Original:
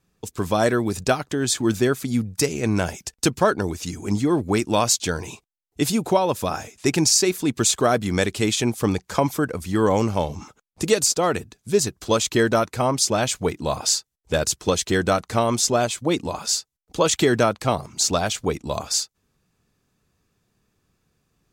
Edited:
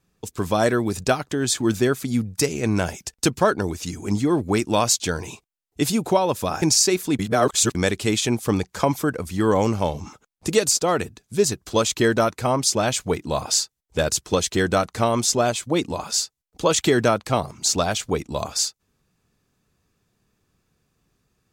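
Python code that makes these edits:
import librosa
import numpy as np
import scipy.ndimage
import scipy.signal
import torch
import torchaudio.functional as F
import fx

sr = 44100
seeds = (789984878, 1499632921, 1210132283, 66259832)

y = fx.edit(x, sr, fx.cut(start_s=6.62, length_s=0.35),
    fx.reverse_span(start_s=7.54, length_s=0.56), tone=tone)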